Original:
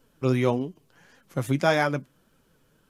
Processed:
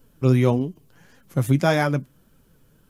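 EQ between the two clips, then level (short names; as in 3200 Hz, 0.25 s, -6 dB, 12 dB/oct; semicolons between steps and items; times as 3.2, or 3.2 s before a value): low shelf 240 Hz +10.5 dB; high shelf 11000 Hz +11.5 dB; 0.0 dB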